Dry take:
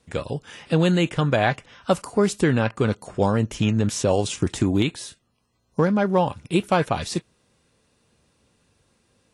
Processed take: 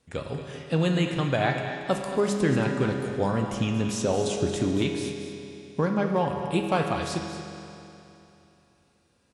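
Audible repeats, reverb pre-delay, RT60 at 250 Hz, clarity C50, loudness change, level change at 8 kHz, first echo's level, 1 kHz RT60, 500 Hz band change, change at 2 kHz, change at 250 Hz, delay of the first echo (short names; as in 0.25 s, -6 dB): 1, 7 ms, 3.0 s, 3.0 dB, -4.0 dB, -4.5 dB, -11.0 dB, 3.0 s, -3.5 dB, -3.5 dB, -4.0 dB, 0.229 s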